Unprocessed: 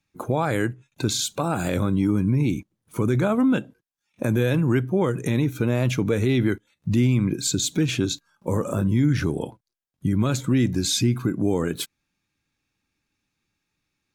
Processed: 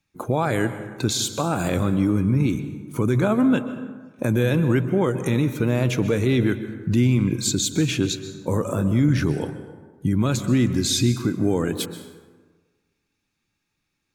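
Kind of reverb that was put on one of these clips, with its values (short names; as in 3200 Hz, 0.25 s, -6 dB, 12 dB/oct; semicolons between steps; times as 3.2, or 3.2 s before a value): plate-style reverb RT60 1.4 s, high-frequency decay 0.5×, pre-delay 0.115 s, DRR 11 dB; gain +1 dB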